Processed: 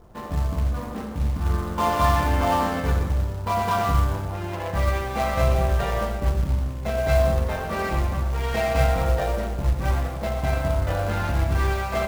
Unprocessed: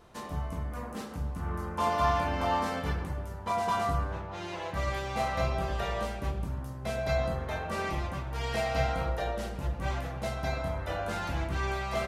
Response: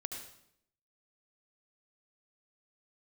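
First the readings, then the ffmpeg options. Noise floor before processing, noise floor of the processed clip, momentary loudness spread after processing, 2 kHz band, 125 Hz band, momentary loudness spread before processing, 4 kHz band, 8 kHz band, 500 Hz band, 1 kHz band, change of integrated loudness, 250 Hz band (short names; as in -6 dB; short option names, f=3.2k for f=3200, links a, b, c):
-40 dBFS, -31 dBFS, 6 LU, +5.5 dB, +10.5 dB, 8 LU, +4.5 dB, +7.5 dB, +7.5 dB, +6.0 dB, +8.5 dB, +8.0 dB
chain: -filter_complex "[0:a]adynamicsmooth=sensitivity=8:basefreq=980,acrusher=bits=4:mode=log:mix=0:aa=0.000001,asplit=2[a][b];[1:a]atrim=start_sample=2205,lowshelf=f=93:g=11.5[c];[b][c]afir=irnorm=-1:irlink=0,volume=2.5dB[d];[a][d]amix=inputs=2:normalize=0"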